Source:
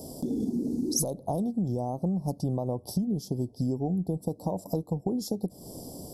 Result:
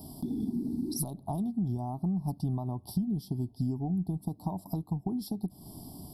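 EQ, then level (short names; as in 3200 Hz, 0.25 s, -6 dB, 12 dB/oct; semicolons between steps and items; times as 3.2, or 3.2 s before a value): fixed phaser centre 1900 Hz, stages 6; 0.0 dB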